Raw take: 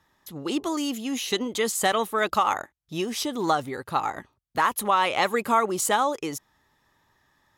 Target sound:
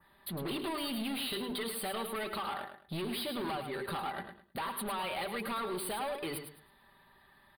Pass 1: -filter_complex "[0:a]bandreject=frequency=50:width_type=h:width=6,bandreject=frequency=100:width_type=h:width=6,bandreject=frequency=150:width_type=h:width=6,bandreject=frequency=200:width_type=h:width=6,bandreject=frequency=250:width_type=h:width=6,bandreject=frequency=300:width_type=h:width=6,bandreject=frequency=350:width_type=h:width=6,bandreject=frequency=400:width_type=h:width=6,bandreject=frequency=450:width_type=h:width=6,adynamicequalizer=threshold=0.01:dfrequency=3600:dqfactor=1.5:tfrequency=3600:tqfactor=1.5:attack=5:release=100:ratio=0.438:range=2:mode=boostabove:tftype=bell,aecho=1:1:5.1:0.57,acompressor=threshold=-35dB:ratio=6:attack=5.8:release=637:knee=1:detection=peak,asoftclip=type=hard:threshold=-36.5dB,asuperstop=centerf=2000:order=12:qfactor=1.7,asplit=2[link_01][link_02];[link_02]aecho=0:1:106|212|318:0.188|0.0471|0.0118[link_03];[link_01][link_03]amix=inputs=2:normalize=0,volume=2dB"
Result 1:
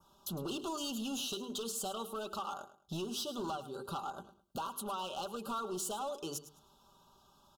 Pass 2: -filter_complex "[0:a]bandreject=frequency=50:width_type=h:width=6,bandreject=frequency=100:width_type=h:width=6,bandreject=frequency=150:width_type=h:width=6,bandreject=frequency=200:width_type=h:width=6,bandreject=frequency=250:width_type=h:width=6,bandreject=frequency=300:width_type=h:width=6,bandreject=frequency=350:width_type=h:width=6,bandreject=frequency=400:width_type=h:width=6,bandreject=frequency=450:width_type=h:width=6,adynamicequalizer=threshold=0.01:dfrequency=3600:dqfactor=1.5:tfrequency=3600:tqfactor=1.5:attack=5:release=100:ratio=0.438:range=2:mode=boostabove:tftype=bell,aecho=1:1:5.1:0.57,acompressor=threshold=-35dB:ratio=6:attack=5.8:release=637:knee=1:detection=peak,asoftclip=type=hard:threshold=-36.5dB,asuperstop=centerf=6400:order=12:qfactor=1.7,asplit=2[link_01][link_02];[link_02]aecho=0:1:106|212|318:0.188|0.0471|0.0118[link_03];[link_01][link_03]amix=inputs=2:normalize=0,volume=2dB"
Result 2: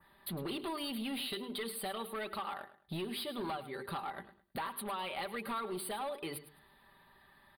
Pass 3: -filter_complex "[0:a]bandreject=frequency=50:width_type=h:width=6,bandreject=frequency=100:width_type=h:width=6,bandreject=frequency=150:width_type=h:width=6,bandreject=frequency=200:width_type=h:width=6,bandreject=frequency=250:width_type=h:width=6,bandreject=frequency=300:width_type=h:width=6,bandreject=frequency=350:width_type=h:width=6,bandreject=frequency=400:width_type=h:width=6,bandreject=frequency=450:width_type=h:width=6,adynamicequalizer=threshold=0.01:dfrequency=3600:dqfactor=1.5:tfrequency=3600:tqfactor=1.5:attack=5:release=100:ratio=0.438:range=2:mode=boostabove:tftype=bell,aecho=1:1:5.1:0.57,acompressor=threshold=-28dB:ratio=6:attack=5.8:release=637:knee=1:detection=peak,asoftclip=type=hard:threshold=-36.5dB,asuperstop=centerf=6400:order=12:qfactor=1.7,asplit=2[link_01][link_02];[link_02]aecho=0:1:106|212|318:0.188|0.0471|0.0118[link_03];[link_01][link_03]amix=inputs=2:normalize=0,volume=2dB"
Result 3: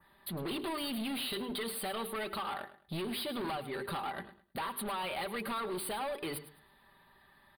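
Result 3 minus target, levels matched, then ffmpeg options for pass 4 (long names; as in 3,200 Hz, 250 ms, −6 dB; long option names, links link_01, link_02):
echo-to-direct −6.5 dB
-filter_complex "[0:a]bandreject=frequency=50:width_type=h:width=6,bandreject=frequency=100:width_type=h:width=6,bandreject=frequency=150:width_type=h:width=6,bandreject=frequency=200:width_type=h:width=6,bandreject=frequency=250:width_type=h:width=6,bandreject=frequency=300:width_type=h:width=6,bandreject=frequency=350:width_type=h:width=6,bandreject=frequency=400:width_type=h:width=6,bandreject=frequency=450:width_type=h:width=6,adynamicequalizer=threshold=0.01:dfrequency=3600:dqfactor=1.5:tfrequency=3600:tqfactor=1.5:attack=5:release=100:ratio=0.438:range=2:mode=boostabove:tftype=bell,aecho=1:1:5.1:0.57,acompressor=threshold=-28dB:ratio=6:attack=5.8:release=637:knee=1:detection=peak,asoftclip=type=hard:threshold=-36.5dB,asuperstop=centerf=6400:order=12:qfactor=1.7,asplit=2[link_01][link_02];[link_02]aecho=0:1:106|212|318:0.398|0.0995|0.0249[link_03];[link_01][link_03]amix=inputs=2:normalize=0,volume=2dB"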